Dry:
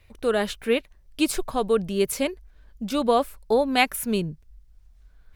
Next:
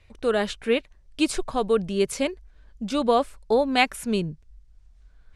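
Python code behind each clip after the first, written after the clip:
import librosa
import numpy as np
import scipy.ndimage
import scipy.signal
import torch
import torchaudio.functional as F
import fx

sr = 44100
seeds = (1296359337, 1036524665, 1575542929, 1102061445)

y = scipy.signal.sosfilt(scipy.signal.butter(4, 9200.0, 'lowpass', fs=sr, output='sos'), x)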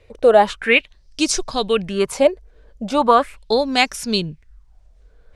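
y = fx.bell_lfo(x, sr, hz=0.39, low_hz=460.0, high_hz=5900.0, db=17)
y = y * 10.0 ** (2.5 / 20.0)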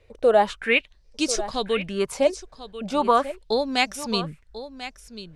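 y = x + 10.0 ** (-13.5 / 20.0) * np.pad(x, (int(1042 * sr / 1000.0), 0))[:len(x)]
y = y * 10.0 ** (-5.5 / 20.0)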